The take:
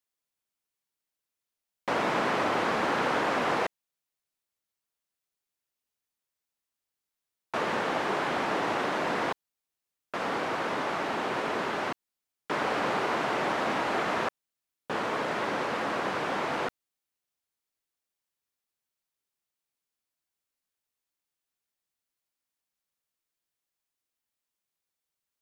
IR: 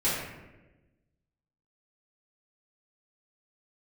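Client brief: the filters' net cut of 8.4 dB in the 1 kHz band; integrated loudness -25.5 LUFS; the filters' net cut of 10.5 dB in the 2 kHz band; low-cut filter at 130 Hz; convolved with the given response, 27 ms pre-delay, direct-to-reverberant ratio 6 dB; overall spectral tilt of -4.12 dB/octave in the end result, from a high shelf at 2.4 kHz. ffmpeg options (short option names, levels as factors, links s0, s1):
-filter_complex "[0:a]highpass=130,equalizer=f=1000:t=o:g=-8,equalizer=f=2000:t=o:g=-8,highshelf=f=2400:g=-6,asplit=2[s0][s1];[1:a]atrim=start_sample=2205,adelay=27[s2];[s1][s2]afir=irnorm=-1:irlink=0,volume=0.141[s3];[s0][s3]amix=inputs=2:normalize=0,volume=2.51"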